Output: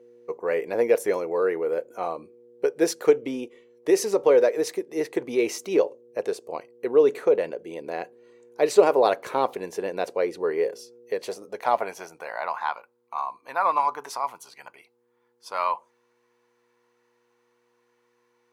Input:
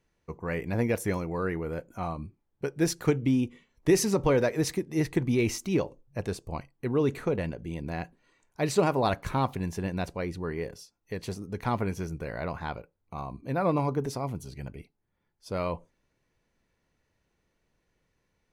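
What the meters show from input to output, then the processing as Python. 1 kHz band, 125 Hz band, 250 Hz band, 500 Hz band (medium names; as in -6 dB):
+7.0 dB, under -15 dB, -3.0 dB, +8.0 dB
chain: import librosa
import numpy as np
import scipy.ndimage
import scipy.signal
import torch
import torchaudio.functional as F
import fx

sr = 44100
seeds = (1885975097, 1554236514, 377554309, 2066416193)

y = fx.dmg_buzz(x, sr, base_hz=120.0, harmonics=4, level_db=-55.0, tilt_db=-4, odd_only=False)
y = fx.filter_sweep_highpass(y, sr, from_hz=460.0, to_hz=980.0, start_s=11.01, end_s=12.7, q=3.0)
y = fx.rider(y, sr, range_db=4, speed_s=2.0)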